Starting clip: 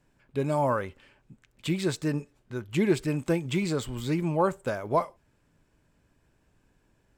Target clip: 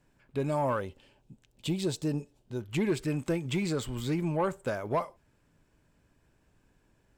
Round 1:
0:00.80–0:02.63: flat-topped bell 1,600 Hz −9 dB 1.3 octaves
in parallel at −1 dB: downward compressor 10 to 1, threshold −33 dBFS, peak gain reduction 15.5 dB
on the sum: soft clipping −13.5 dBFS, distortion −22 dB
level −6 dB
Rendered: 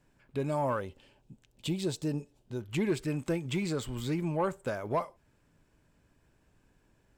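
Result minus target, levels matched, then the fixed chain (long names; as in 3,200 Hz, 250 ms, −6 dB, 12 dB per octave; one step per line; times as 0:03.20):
downward compressor: peak gain reduction +7 dB
0:00.80–0:02.63: flat-topped bell 1,600 Hz −9 dB 1.3 octaves
in parallel at −1 dB: downward compressor 10 to 1, threshold −25.5 dBFS, peak gain reduction 9 dB
on the sum: soft clipping −13.5 dBFS, distortion −20 dB
level −6 dB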